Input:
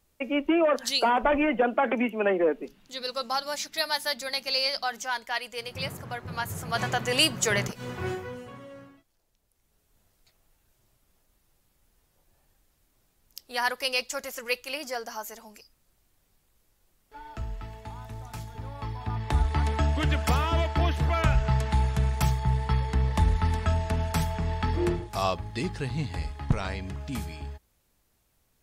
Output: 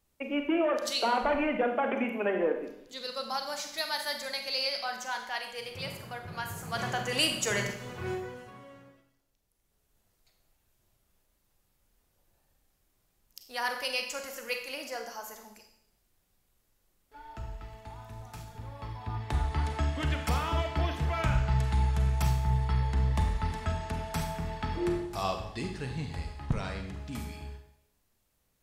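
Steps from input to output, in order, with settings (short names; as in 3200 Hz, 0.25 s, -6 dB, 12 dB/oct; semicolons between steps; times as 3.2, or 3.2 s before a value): Schroeder reverb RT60 0.75 s, combs from 31 ms, DRR 4.5 dB; gain -5.5 dB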